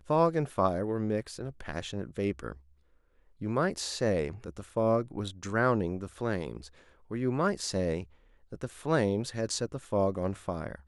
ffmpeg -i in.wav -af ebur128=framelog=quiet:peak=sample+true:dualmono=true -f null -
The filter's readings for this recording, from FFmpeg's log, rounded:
Integrated loudness:
  I:         -28.3 LUFS
  Threshold: -38.9 LUFS
Loudness range:
  LRA:         3.3 LU
  Threshold: -49.4 LUFS
  LRA low:   -31.3 LUFS
  LRA high:  -28.0 LUFS
Sample peak:
  Peak:      -12.5 dBFS
True peak:
  Peak:      -12.5 dBFS